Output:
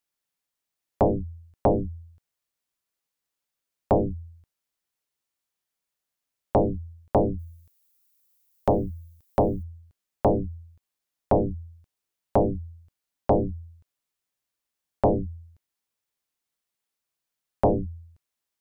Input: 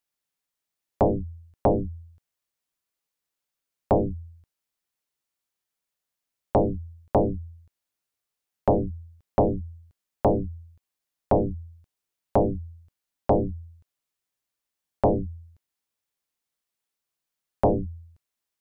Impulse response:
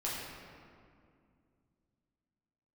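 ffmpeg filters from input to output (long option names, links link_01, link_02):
-filter_complex "[0:a]asplit=3[link_01][link_02][link_03];[link_01]afade=type=out:start_time=7.38:duration=0.02[link_04];[link_02]aemphasis=mode=production:type=75fm,afade=type=in:start_time=7.38:duration=0.02,afade=type=out:start_time=9.62:duration=0.02[link_05];[link_03]afade=type=in:start_time=9.62:duration=0.02[link_06];[link_04][link_05][link_06]amix=inputs=3:normalize=0"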